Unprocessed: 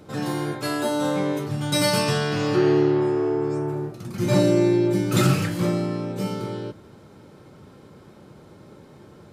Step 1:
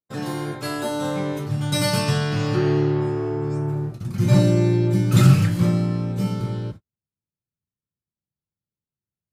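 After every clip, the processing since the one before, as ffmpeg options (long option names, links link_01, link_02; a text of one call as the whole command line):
ffmpeg -i in.wav -af "agate=range=-52dB:threshold=-37dB:ratio=16:detection=peak,asubboost=boost=5:cutoff=160,volume=-1dB" out.wav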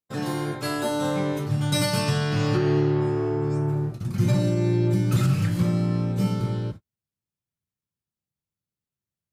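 ffmpeg -i in.wav -af "alimiter=limit=-12.5dB:level=0:latency=1:release=356" out.wav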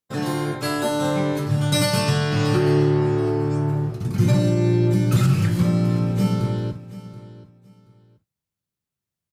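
ffmpeg -i in.wav -af "aecho=1:1:729|1458:0.141|0.0311,volume=3.5dB" out.wav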